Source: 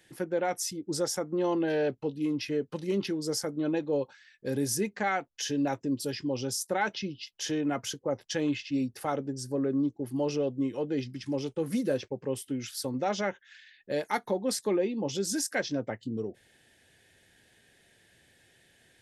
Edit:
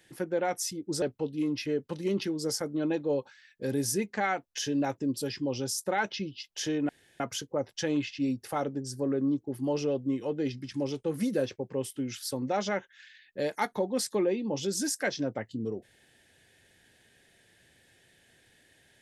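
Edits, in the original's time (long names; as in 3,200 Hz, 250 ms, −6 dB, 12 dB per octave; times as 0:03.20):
0:01.02–0:01.85: remove
0:07.72: splice in room tone 0.31 s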